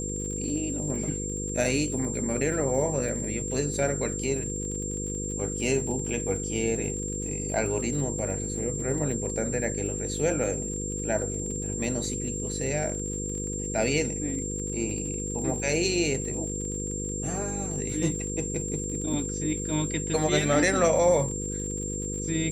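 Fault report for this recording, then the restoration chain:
mains buzz 50 Hz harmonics 10 −34 dBFS
surface crackle 44 per second −36 dBFS
whistle 7,400 Hz −33 dBFS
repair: click removal
hum removal 50 Hz, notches 10
notch filter 7,400 Hz, Q 30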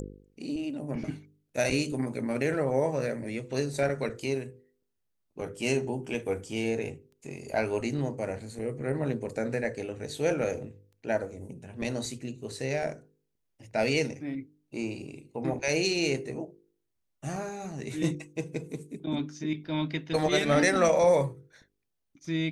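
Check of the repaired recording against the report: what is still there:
none of them is left

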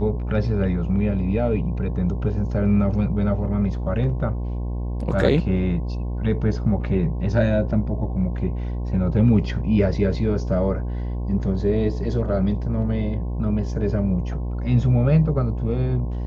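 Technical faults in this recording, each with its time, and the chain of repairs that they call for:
mains buzz 60 Hz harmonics 18 −26 dBFS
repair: hum removal 60 Hz, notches 18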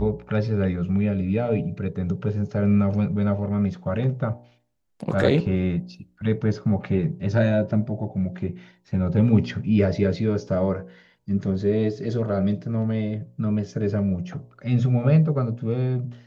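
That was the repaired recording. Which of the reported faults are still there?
none of them is left

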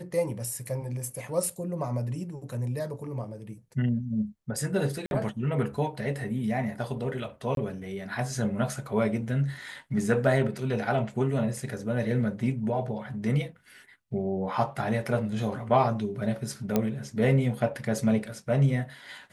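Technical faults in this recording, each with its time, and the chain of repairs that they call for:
0:05.06–0:05.11: drop-out 51 ms
0:07.55–0:07.57: drop-out 22 ms
0:16.76: click −11 dBFS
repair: click removal
repair the gap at 0:05.06, 51 ms
repair the gap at 0:07.55, 22 ms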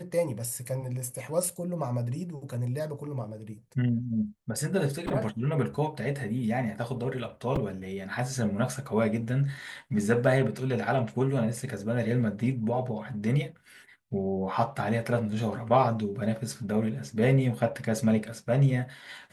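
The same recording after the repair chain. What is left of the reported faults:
none of them is left

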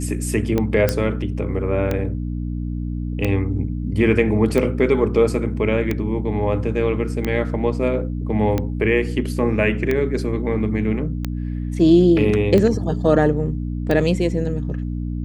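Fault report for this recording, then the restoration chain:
mains hum 60 Hz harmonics 5 −25 dBFS
scratch tick 45 rpm −9 dBFS
0:00.89: click −4 dBFS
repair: click removal
hum removal 60 Hz, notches 5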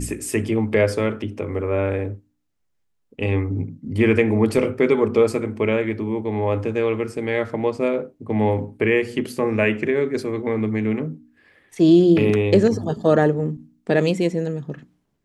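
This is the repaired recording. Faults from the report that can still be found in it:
none of them is left

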